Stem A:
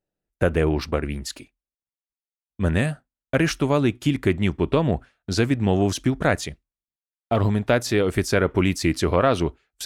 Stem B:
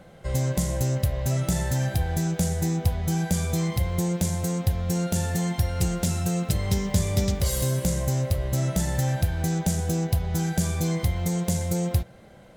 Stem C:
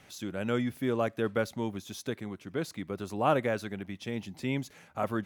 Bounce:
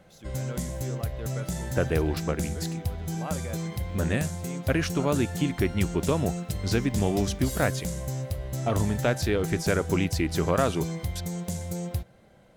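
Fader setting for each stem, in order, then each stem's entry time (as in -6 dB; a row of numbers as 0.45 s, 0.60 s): -5.5 dB, -7.0 dB, -11.0 dB; 1.35 s, 0.00 s, 0.00 s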